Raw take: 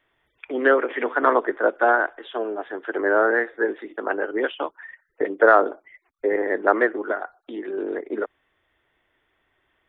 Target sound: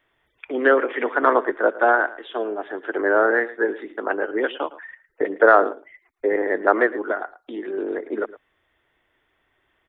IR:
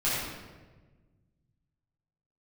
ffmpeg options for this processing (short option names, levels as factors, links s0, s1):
-af "aecho=1:1:111:0.133,volume=1.12"